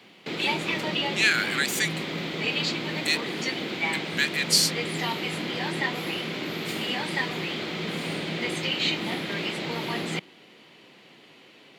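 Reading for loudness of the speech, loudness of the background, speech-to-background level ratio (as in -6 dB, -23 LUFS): -24.5 LUFS, -28.5 LUFS, 4.0 dB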